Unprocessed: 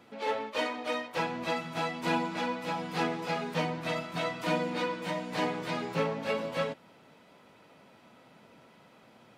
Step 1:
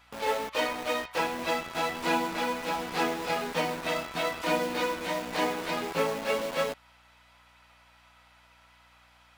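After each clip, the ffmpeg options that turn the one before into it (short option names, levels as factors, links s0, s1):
-filter_complex "[0:a]highpass=260,acrossover=split=790[s0][s1];[s0]acrusher=bits=6:mix=0:aa=0.000001[s2];[s2][s1]amix=inputs=2:normalize=0,aeval=exprs='val(0)+0.000398*(sin(2*PI*60*n/s)+sin(2*PI*2*60*n/s)/2+sin(2*PI*3*60*n/s)/3+sin(2*PI*4*60*n/s)/4+sin(2*PI*5*60*n/s)/5)':c=same,volume=1.41"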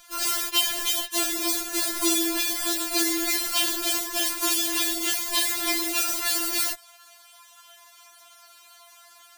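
-filter_complex "[0:a]acrossover=split=3300[s0][s1];[s0]alimiter=limit=0.0668:level=0:latency=1:release=17[s2];[s1]crystalizer=i=3.5:c=0[s3];[s2][s3]amix=inputs=2:normalize=0,afftfilt=real='re*4*eq(mod(b,16),0)':imag='im*4*eq(mod(b,16),0)':win_size=2048:overlap=0.75,volume=2.82"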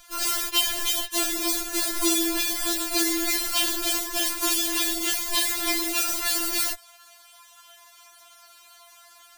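-af "lowshelf=f=86:g=11.5"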